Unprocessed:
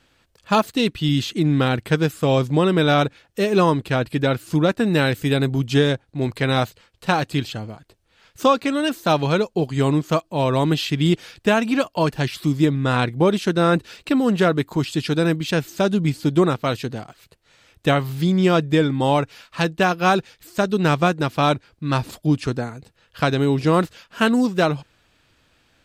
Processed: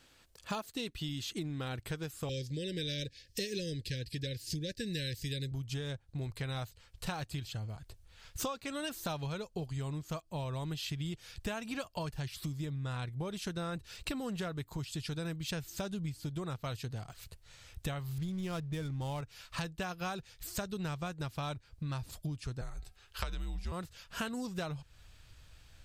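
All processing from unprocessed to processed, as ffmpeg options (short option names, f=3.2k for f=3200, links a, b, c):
-filter_complex "[0:a]asettb=1/sr,asplit=3[a][b][c];[a]atrim=end=2.294[d];[b]atrim=start=2.29:end=5.52,asetpts=PTS-STARTPTS,afade=t=in:d=0.004:c=qsin,afade=t=out:st=3.226:d=0.004:c=qsin,asuperstop=centerf=960:order=20:qfactor=0.92,equalizer=f=4.9k:w=1.7:g=13[e];[c]atrim=start=5.516[f];[d][e]acrossfade=d=0.004:c1=hsin:c2=qsin[g];[g][f]acrossfade=d=0.004:c1=qsin:c2=hsin,asettb=1/sr,asplit=3[h][i][j];[h]atrim=end=18.184[k];[i]atrim=start=18.18:end=19.21,asetpts=PTS-STARTPTS,afade=t=in:d=0.004:c=qsin,afade=t=out:st=1.026:d=0.004:c=qsin,lowshelf=f=96:g=8.5,acrusher=bits=7:mode=log:mix=0:aa=0.000001,adynamicsmooth=sensitivity=5.5:basefreq=1.2k[l];[j]atrim=start=19.206[m];[k][l]acrossfade=d=0.004:c1=hsin:c2=qsin[n];[n][m]acrossfade=d=0.004:c1=qsin:c2=hsin,asettb=1/sr,asplit=3[o][p][q];[o]atrim=end=22.614[r];[p]atrim=start=22.61:end=23.72,asetpts=PTS-STARTPTS,afade=t=in:d=0.004:c=qsin,afade=t=out:st=1.106:d=0.004:c=qsin,lowshelf=f=370:g=-8,bandreject=f=279.7:t=h:w=4,bandreject=f=559.4:t=h:w=4,bandreject=f=839.1:t=h:w=4,bandreject=f=1.1188k:t=h:w=4,bandreject=f=1.3985k:t=h:w=4,bandreject=f=1.6782k:t=h:w=4,bandreject=f=1.9579k:t=h:w=4,bandreject=f=2.2376k:t=h:w=4,bandreject=f=2.5173k:t=h:w=4,bandreject=f=2.797k:t=h:w=4,bandreject=f=3.0767k:t=h:w=4,bandreject=f=3.3564k:t=h:w=4,bandreject=f=3.6361k:t=h:w=4,bandreject=f=3.9158k:t=h:w=4,bandreject=f=4.1955k:t=h:w=4,bandreject=f=4.4752k:t=h:w=4,bandreject=f=4.7549k:t=h:w=4,bandreject=f=5.0346k:t=h:w=4,bandreject=f=5.3143k:t=h:w=4,afreqshift=-89[s];[q]atrim=start=23.716[t];[r][s]acrossfade=d=0.004:c1=hsin:c2=qsin[u];[u][t]acrossfade=d=0.004:c1=qsin:c2=hsin,asubboost=boost=9.5:cutoff=86,acompressor=threshold=-31dB:ratio=8,bass=f=250:g=-1,treble=f=4k:g=7,volume=-4.5dB"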